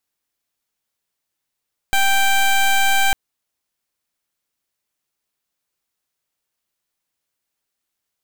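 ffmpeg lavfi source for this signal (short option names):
-f lavfi -i "aevalsrc='0.178*(2*lt(mod(784*t,1),0.15)-1)':d=1.2:s=44100"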